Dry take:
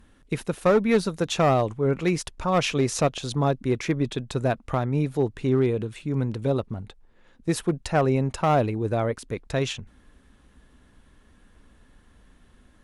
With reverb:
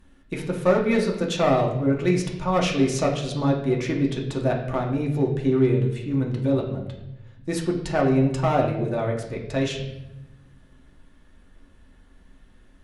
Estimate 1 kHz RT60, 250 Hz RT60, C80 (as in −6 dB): 0.75 s, 1.3 s, 9.0 dB